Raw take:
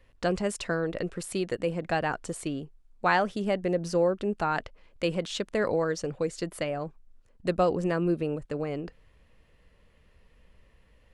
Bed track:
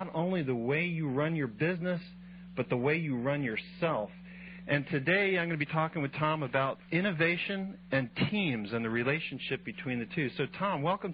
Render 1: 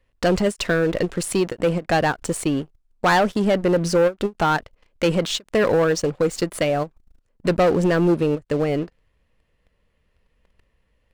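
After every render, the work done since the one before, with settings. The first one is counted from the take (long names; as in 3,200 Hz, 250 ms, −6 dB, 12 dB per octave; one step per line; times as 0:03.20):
leveller curve on the samples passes 3
every ending faded ahead of time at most 420 dB per second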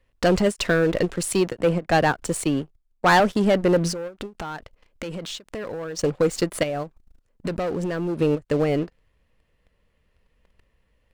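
0:01.16–0:03.20: multiband upward and downward expander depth 40%
0:03.92–0:05.99: downward compressor 12 to 1, threshold −29 dBFS
0:06.63–0:08.20: downward compressor, threshold −24 dBFS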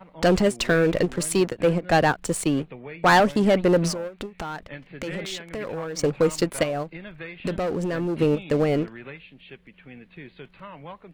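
mix in bed track −10 dB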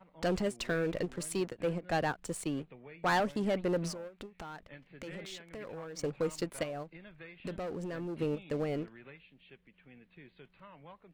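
level −12.5 dB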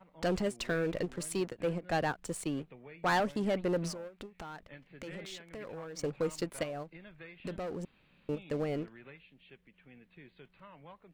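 0:07.85–0:08.29: fill with room tone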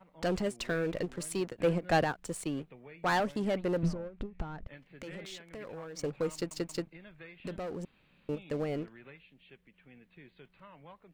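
0:01.58–0:02.04: clip gain +5 dB
0:03.83–0:04.67: RIAA equalisation playback
0:06.33: stutter in place 0.18 s, 3 plays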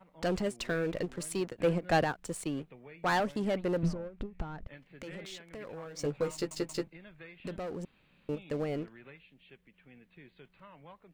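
0:05.84–0:06.88: double-tracking delay 14 ms −5 dB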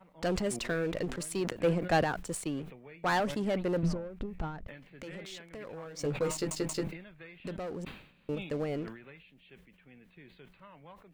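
level that may fall only so fast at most 88 dB per second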